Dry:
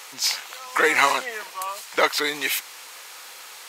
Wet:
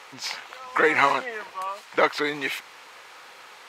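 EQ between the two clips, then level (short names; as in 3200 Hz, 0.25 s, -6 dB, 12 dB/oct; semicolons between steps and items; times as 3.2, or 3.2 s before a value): tilt -4 dB/oct; tilt shelf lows -5.5 dB; high shelf 4400 Hz -10 dB; 0.0 dB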